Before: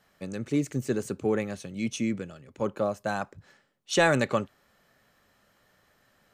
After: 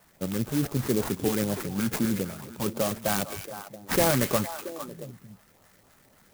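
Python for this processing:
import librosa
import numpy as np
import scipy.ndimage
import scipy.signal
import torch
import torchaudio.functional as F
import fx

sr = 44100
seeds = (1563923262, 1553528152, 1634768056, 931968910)

p1 = fx.high_shelf(x, sr, hz=8100.0, db=8.5)
p2 = fx.over_compress(p1, sr, threshold_db=-31.0, ratio=-1.0)
p3 = p1 + (p2 * 10.0 ** (-3.0 / 20.0))
p4 = fx.sample_hold(p3, sr, seeds[0], rate_hz=3800.0, jitter_pct=0)
p5 = fx.filter_lfo_notch(p4, sr, shape='saw_up', hz=3.9, low_hz=290.0, high_hz=2700.0, q=1.1)
p6 = p5 + fx.echo_stepped(p5, sr, ms=226, hz=2700.0, octaves=-1.4, feedback_pct=70, wet_db=-5, dry=0)
y = fx.clock_jitter(p6, sr, seeds[1], jitter_ms=0.089)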